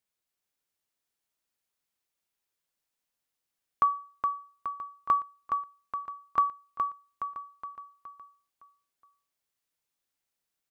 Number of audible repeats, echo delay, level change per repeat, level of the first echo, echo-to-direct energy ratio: 4, 418 ms, −6.0 dB, −5.0 dB, −4.0 dB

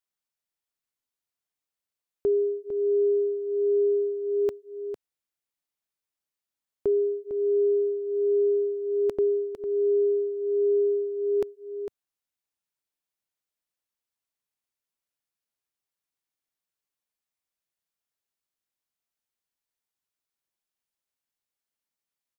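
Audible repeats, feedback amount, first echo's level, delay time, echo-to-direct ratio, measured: 1, repeats not evenly spaced, −9.5 dB, 453 ms, −9.5 dB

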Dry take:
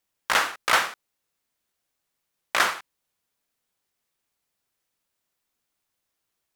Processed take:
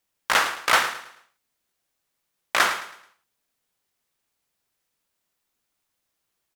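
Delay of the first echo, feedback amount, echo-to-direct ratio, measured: 108 ms, 36%, −12.0 dB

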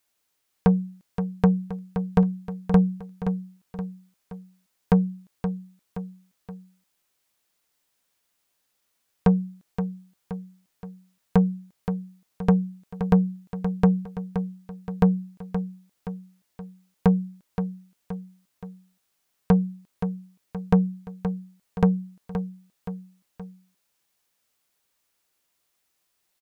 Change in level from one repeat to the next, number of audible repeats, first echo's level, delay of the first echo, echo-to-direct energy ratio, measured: −6.0 dB, 3, −9.0 dB, 523 ms, −8.0 dB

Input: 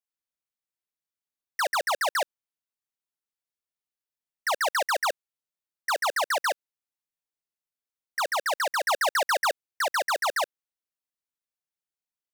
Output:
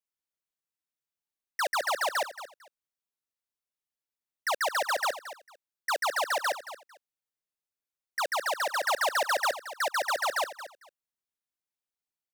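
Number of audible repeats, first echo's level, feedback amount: 2, −13.5 dB, 19%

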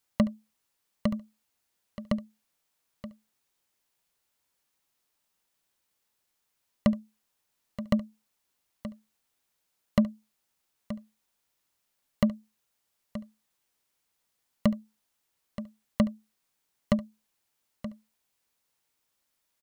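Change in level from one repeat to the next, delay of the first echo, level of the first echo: repeats not evenly spaced, 71 ms, −19.0 dB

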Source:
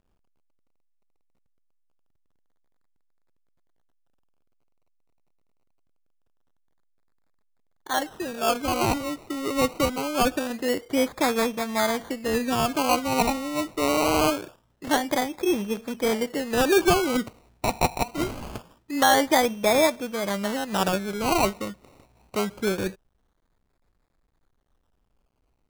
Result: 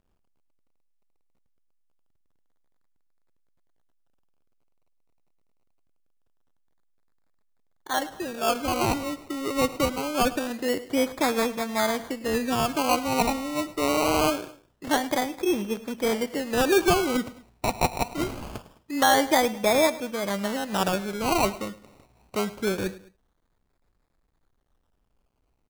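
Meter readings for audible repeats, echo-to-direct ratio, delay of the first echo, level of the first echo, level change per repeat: 2, −17.0 dB, 105 ms, −18.0 dB, −7.0 dB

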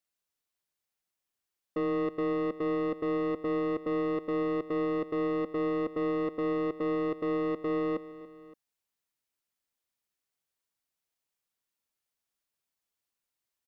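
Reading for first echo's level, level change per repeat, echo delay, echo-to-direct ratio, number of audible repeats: −17.0 dB, −4.5 dB, 284 ms, −16.0 dB, 2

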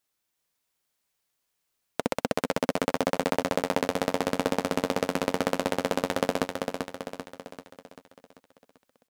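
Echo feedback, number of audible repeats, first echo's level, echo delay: 52%, 6, −5.0 dB, 390 ms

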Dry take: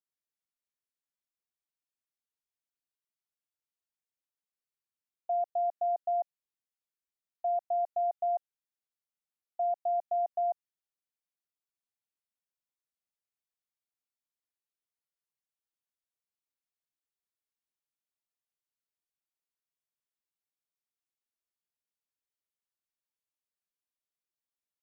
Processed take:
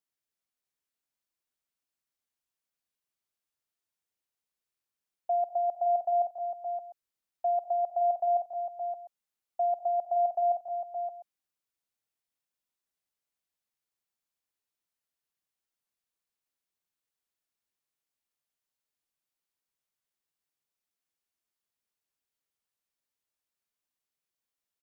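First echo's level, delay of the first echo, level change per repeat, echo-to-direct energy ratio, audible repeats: −19.5 dB, 65 ms, repeats not evenly spaced, −5.0 dB, 6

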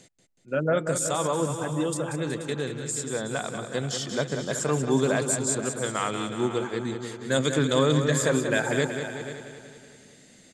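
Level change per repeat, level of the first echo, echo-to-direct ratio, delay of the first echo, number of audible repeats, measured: repeats not evenly spaced, −8.0 dB, −5.0 dB, 186 ms, 11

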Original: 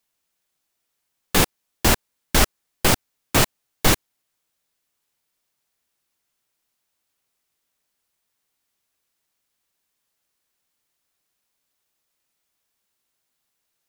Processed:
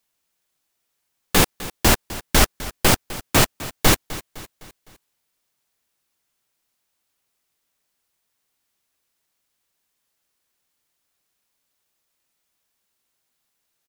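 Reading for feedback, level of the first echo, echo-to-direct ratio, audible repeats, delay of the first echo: 48%, −16.5 dB, −15.5 dB, 3, 255 ms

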